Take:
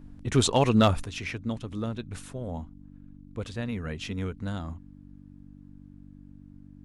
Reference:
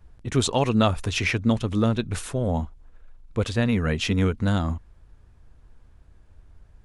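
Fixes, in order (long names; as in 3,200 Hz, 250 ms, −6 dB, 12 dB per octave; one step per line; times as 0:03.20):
clipped peaks rebuilt −12 dBFS
hum removal 48.3 Hz, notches 6
level correction +10.5 dB, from 0:01.04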